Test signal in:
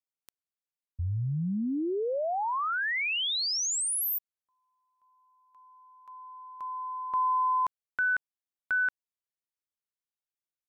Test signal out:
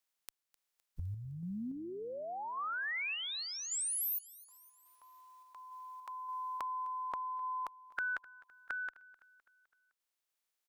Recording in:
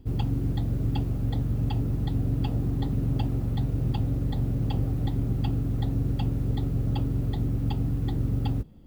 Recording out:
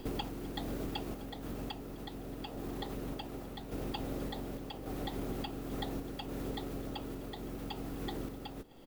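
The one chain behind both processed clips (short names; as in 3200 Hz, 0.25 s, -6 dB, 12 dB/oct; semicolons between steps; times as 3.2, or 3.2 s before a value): spectral limiter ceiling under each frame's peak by 14 dB; bell 110 Hz -13 dB 2.8 oct; compressor 5:1, threshold -46 dBFS; random-step tremolo; on a send: feedback echo 0.256 s, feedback 54%, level -21 dB; on the sum: gain +9.5 dB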